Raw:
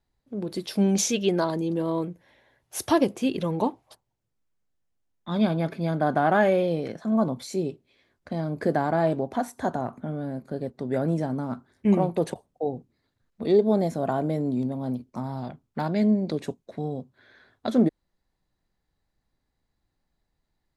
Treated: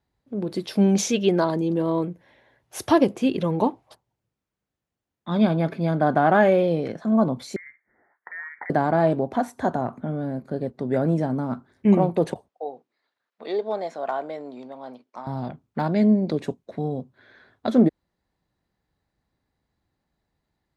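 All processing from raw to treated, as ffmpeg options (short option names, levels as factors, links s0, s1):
-filter_complex "[0:a]asettb=1/sr,asplit=3[s0][s1][s2];[s0]atrim=end=7.564[s3];[s1]atrim=start=7.56:end=8.7,asetpts=PTS-STARTPTS,afade=t=in:d=0.004:c=qsin,afade=t=out:st=1.136:d=0.004:c=qsin,acompressor=threshold=0.0224:ratio=5:attack=3.2:release=140:knee=1:detection=peak,highpass=f=750:t=q:w=2.6,lowpass=f=2100:t=q:w=0.5098,lowpass=f=2100:t=q:w=0.6013,lowpass=f=2100:t=q:w=0.9,lowpass=f=2100:t=q:w=2.563,afreqshift=-2500[s4];[s2]atrim=start=8.696[s5];[s3][s4]acrossfade=d=0.004:c1=hsin:c2=qsin[s6];[s6][s5]acrossfade=d=0.004:c1=qsin:c2=hsin,asettb=1/sr,asplit=3[s7][s8][s9];[s7]atrim=end=12.484[s10];[s8]atrim=start=12.48:end=15.27,asetpts=PTS-STARTPTS,afade=t=in:d=0.004:c=qsin,afade=t=out:st=2.786:d=0.004:c=qsin,highpass=710,lowpass=5700,volume=10,asoftclip=hard,volume=0.1[s11];[s9]atrim=start=15.266[s12];[s10][s11]acrossfade=d=0.004:c1=hsin:c2=qsin[s13];[s13][s12]acrossfade=d=0.004:c1=qsin:c2=hsin,highpass=58,highshelf=f=4900:g=-8.5,volume=1.5"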